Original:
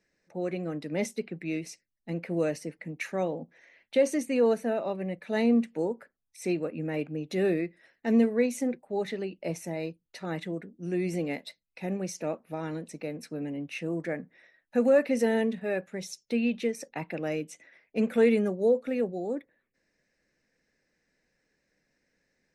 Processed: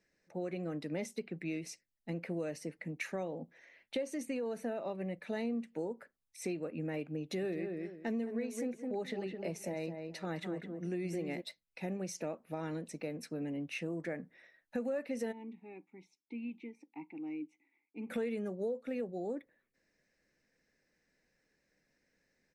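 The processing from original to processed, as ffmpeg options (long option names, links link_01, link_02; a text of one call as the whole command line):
ffmpeg -i in.wav -filter_complex "[0:a]asplit=3[link_01][link_02][link_03];[link_01]afade=type=out:start_time=4.04:duration=0.02[link_04];[link_02]acompressor=threshold=-24dB:ratio=6:attack=3.2:release=140:knee=1:detection=peak,afade=type=in:start_time=4.04:duration=0.02,afade=type=out:start_time=4.63:duration=0.02[link_05];[link_03]afade=type=in:start_time=4.63:duration=0.02[link_06];[link_04][link_05][link_06]amix=inputs=3:normalize=0,asplit=3[link_07][link_08][link_09];[link_07]afade=type=out:start_time=7.41:duration=0.02[link_10];[link_08]asplit=2[link_11][link_12];[link_12]adelay=211,lowpass=frequency=1900:poles=1,volume=-7dB,asplit=2[link_13][link_14];[link_14]adelay=211,lowpass=frequency=1900:poles=1,volume=0.21,asplit=2[link_15][link_16];[link_16]adelay=211,lowpass=frequency=1900:poles=1,volume=0.21[link_17];[link_11][link_13][link_15][link_17]amix=inputs=4:normalize=0,afade=type=in:start_time=7.41:duration=0.02,afade=type=out:start_time=11.4:duration=0.02[link_18];[link_09]afade=type=in:start_time=11.4:duration=0.02[link_19];[link_10][link_18][link_19]amix=inputs=3:normalize=0,asplit=3[link_20][link_21][link_22];[link_20]afade=type=out:start_time=15.31:duration=0.02[link_23];[link_21]asplit=3[link_24][link_25][link_26];[link_24]bandpass=frequency=300:width_type=q:width=8,volume=0dB[link_27];[link_25]bandpass=frequency=870:width_type=q:width=8,volume=-6dB[link_28];[link_26]bandpass=frequency=2240:width_type=q:width=8,volume=-9dB[link_29];[link_27][link_28][link_29]amix=inputs=3:normalize=0,afade=type=in:start_time=15.31:duration=0.02,afade=type=out:start_time=18.09:duration=0.02[link_30];[link_22]afade=type=in:start_time=18.09:duration=0.02[link_31];[link_23][link_30][link_31]amix=inputs=3:normalize=0,acompressor=threshold=-32dB:ratio=5,volume=-2.5dB" out.wav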